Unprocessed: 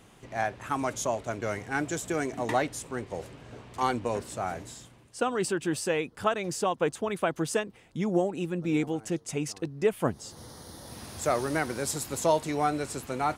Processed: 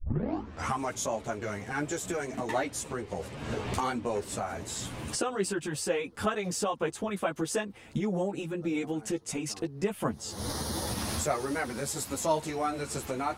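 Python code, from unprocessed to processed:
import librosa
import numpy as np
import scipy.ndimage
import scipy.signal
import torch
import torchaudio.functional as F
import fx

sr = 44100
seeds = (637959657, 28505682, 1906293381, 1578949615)

y = fx.tape_start_head(x, sr, length_s=0.78)
y = fx.recorder_agc(y, sr, target_db=-20.5, rise_db_per_s=42.0, max_gain_db=30)
y = fx.ensemble(y, sr)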